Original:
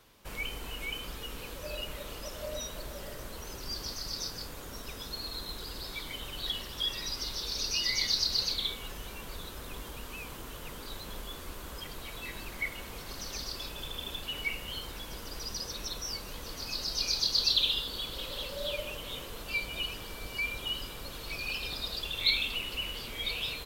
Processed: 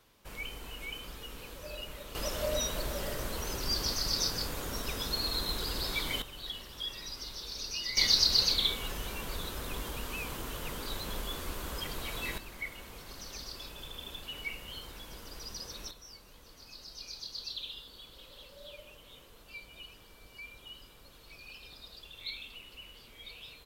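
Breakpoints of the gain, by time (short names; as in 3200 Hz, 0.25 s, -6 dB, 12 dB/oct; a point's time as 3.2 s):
-4 dB
from 2.15 s +6 dB
from 6.22 s -6 dB
from 7.97 s +4 dB
from 12.38 s -5 dB
from 15.91 s -14 dB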